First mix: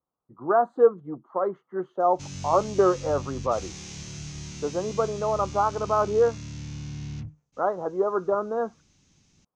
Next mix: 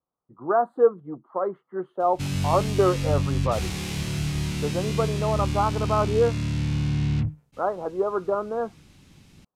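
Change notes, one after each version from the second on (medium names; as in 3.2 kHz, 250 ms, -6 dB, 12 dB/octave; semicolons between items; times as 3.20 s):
speech -12.0 dB; master: remove four-pole ladder low-pass 6.8 kHz, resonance 70%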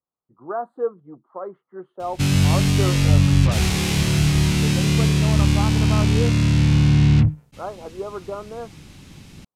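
speech -6.0 dB; background +9.5 dB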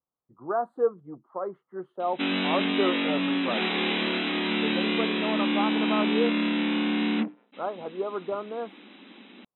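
background: add brick-wall FIR band-pass 200–4000 Hz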